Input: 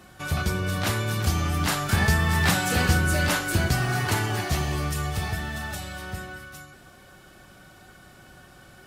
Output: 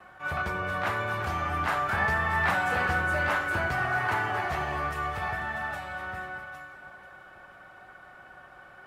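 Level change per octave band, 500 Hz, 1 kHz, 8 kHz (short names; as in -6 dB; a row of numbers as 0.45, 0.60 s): -2.0, +2.5, -19.0 dB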